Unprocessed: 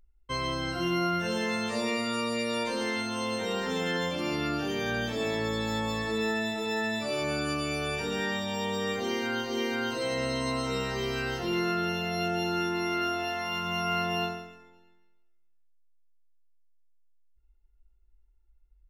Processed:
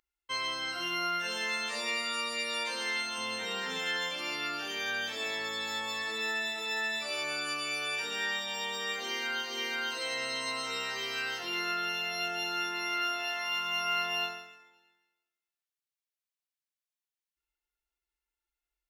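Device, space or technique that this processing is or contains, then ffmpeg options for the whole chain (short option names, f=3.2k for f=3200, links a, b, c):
filter by subtraction: -filter_complex "[0:a]asplit=2[a][b];[b]lowpass=2.3k,volume=-1[c];[a][c]amix=inputs=2:normalize=0,asettb=1/sr,asplit=3[d][e][f];[d]atrim=end=3.184[g];[e]atrim=start=3.18:end=3.79,asetpts=PTS-STARTPTS,afade=t=in:d=0.004:c=qsin,afade=t=out:st=0.606:d=0.004:c=qsin,bass=f=250:g=9,treble=f=4k:g=-2[h];[f]atrim=start=3.786[i];[g][h]acrossfade=d=0.004:c1=hsin:c2=qsin[j];[j][i]acrossfade=d=0.004:c1=qsin:c2=hsin"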